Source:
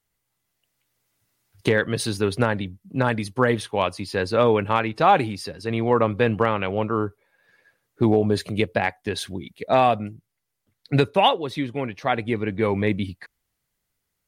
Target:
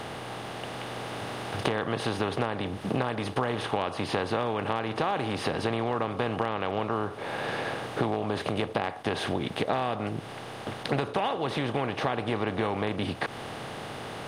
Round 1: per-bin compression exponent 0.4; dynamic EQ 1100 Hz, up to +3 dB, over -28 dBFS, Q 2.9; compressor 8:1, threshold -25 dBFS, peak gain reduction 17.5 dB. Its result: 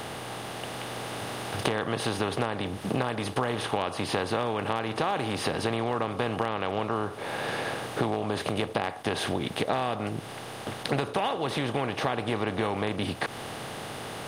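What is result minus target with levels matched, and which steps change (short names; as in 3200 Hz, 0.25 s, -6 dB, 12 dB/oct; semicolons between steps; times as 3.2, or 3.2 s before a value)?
8000 Hz band +6.0 dB
add after compressor: high shelf 7000 Hz -10.5 dB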